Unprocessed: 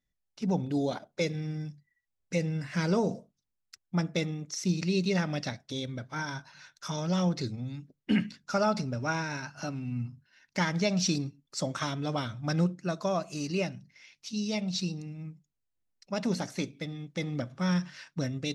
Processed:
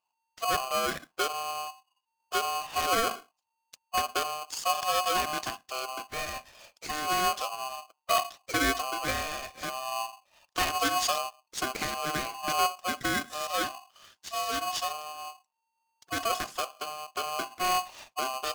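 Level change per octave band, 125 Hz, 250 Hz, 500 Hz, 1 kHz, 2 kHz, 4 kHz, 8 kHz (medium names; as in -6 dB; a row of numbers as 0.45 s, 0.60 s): -17.0 dB, -11.0 dB, -1.5 dB, +10.0 dB, +5.0 dB, +6.0 dB, +6.5 dB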